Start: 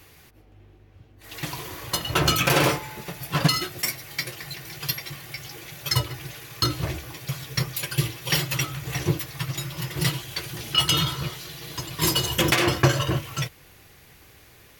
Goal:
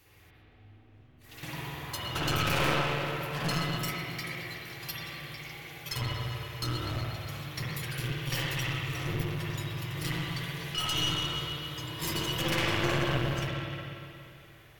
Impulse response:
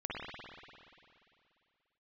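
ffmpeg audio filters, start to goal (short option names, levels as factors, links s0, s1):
-filter_complex "[0:a]bandreject=f=46.25:t=h:w=4,bandreject=f=92.5:t=h:w=4,bandreject=f=138.75:t=h:w=4,bandreject=f=185:t=h:w=4,bandreject=f=231.25:t=h:w=4,bandreject=f=277.5:t=h:w=4,bandreject=f=323.75:t=h:w=4,bandreject=f=370:t=h:w=4,bandreject=f=416.25:t=h:w=4,bandreject=f=462.5:t=h:w=4,bandreject=f=508.75:t=h:w=4,bandreject=f=555:t=h:w=4,bandreject=f=601.25:t=h:w=4,bandreject=f=647.5:t=h:w=4,bandreject=f=693.75:t=h:w=4,bandreject=f=740:t=h:w=4,bandreject=f=786.25:t=h:w=4,bandreject=f=832.5:t=h:w=4,bandreject=f=878.75:t=h:w=4,bandreject=f=925:t=h:w=4,bandreject=f=971.25:t=h:w=4,bandreject=f=1017.5:t=h:w=4,bandreject=f=1063.75:t=h:w=4,bandreject=f=1110:t=h:w=4,bandreject=f=1156.25:t=h:w=4,bandreject=f=1202.5:t=h:w=4,bandreject=f=1248.75:t=h:w=4,bandreject=f=1295:t=h:w=4,bandreject=f=1341.25:t=h:w=4,bandreject=f=1387.5:t=h:w=4,bandreject=f=1433.75:t=h:w=4,bandreject=f=1480:t=h:w=4,bandreject=f=1526.25:t=h:w=4[s0];[1:a]atrim=start_sample=2205[s1];[s0][s1]afir=irnorm=-1:irlink=0,aeval=exprs='clip(val(0),-1,0.0562)':c=same,volume=0.447"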